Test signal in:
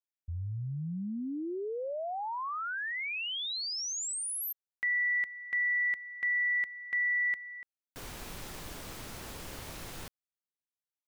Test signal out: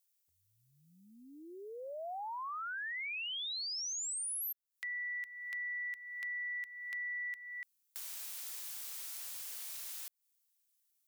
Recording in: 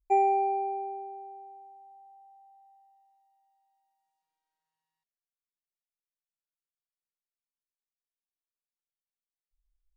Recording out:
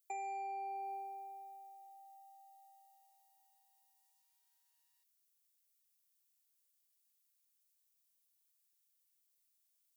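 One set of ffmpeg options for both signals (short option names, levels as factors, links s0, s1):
-af "highpass=340,aderivative,acompressor=threshold=0.00224:ratio=8:attack=1.4:release=465:knee=1:detection=peak,volume=5.31"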